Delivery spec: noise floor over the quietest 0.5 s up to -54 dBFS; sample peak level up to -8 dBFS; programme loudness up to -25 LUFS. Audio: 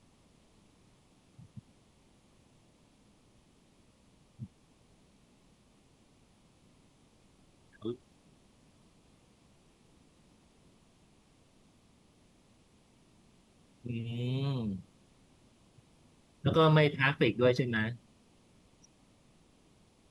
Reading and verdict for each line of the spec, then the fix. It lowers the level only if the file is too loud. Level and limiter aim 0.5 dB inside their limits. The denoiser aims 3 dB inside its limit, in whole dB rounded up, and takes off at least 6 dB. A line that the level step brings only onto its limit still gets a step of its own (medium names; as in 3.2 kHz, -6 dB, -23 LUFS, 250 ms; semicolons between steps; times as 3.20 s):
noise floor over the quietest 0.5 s -65 dBFS: pass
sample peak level -12.5 dBFS: pass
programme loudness -30.5 LUFS: pass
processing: none needed